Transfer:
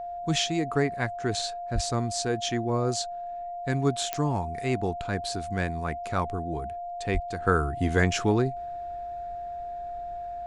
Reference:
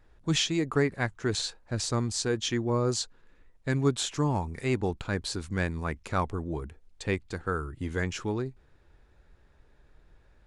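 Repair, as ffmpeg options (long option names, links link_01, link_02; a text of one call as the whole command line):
ffmpeg -i in.wav -filter_complex "[0:a]adeclick=threshold=4,bandreject=frequency=700:width=30,asplit=3[link_01][link_02][link_03];[link_01]afade=type=out:start_time=1.74:duration=0.02[link_04];[link_02]highpass=frequency=140:width=0.5412,highpass=frequency=140:width=1.3066,afade=type=in:start_time=1.74:duration=0.02,afade=type=out:start_time=1.86:duration=0.02[link_05];[link_03]afade=type=in:start_time=1.86:duration=0.02[link_06];[link_04][link_05][link_06]amix=inputs=3:normalize=0,asplit=3[link_07][link_08][link_09];[link_07]afade=type=out:start_time=7.13:duration=0.02[link_10];[link_08]highpass=frequency=140:width=0.5412,highpass=frequency=140:width=1.3066,afade=type=in:start_time=7.13:duration=0.02,afade=type=out:start_time=7.25:duration=0.02[link_11];[link_09]afade=type=in:start_time=7.25:duration=0.02[link_12];[link_10][link_11][link_12]amix=inputs=3:normalize=0,asetnsamples=nb_out_samples=441:pad=0,asendcmd='7.42 volume volume -7.5dB',volume=0dB" out.wav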